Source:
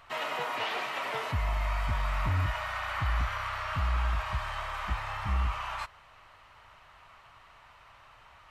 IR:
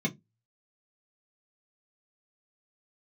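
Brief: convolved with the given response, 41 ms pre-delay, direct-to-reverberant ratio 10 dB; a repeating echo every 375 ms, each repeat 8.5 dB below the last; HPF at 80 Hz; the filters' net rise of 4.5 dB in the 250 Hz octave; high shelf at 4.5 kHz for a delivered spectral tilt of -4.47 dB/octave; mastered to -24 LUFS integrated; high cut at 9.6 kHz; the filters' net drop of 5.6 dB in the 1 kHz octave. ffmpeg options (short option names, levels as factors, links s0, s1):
-filter_complex "[0:a]highpass=80,lowpass=9600,equalizer=f=250:t=o:g=7,equalizer=f=1000:t=o:g=-7,highshelf=f=4500:g=-6,aecho=1:1:375|750|1125|1500:0.376|0.143|0.0543|0.0206,asplit=2[s0][s1];[1:a]atrim=start_sample=2205,adelay=41[s2];[s1][s2]afir=irnorm=-1:irlink=0,volume=0.15[s3];[s0][s3]amix=inputs=2:normalize=0,volume=3.35"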